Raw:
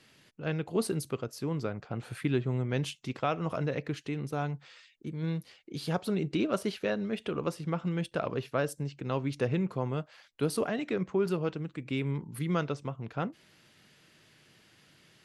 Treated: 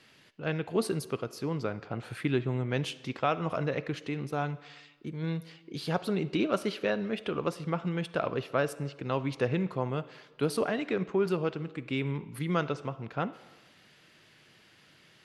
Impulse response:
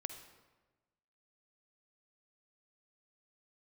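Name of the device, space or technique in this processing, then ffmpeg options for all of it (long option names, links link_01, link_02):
filtered reverb send: -filter_complex "[0:a]asplit=2[link_01][link_02];[link_02]highpass=frequency=460:poles=1,lowpass=5600[link_03];[1:a]atrim=start_sample=2205[link_04];[link_03][link_04]afir=irnorm=-1:irlink=0,volume=-1dB[link_05];[link_01][link_05]amix=inputs=2:normalize=0,volume=-1.5dB"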